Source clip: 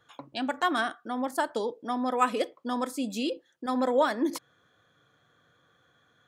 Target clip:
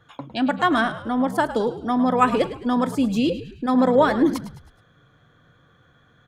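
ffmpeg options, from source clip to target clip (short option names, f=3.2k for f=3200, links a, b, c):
-filter_complex "[0:a]bass=f=250:g=9,treble=f=4k:g=-7,asplit=2[a][b];[b]asplit=4[c][d][e][f];[c]adelay=106,afreqshift=-65,volume=-13dB[g];[d]adelay=212,afreqshift=-130,volume=-19.9dB[h];[e]adelay=318,afreqshift=-195,volume=-26.9dB[i];[f]adelay=424,afreqshift=-260,volume=-33.8dB[j];[g][h][i][j]amix=inputs=4:normalize=0[k];[a][k]amix=inputs=2:normalize=0,volume=6.5dB"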